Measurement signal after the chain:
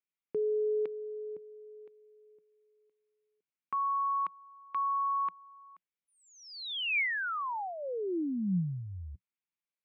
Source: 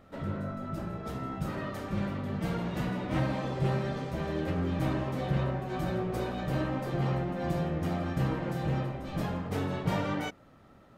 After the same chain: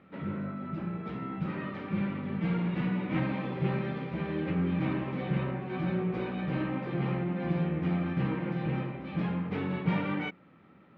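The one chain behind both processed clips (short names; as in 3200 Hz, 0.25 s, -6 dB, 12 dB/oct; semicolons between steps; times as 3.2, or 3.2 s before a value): speaker cabinet 110–3400 Hz, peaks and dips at 110 Hz -4 dB, 180 Hz +8 dB, 330 Hz +3 dB, 650 Hz -7 dB, 2300 Hz +7 dB; gain -1.5 dB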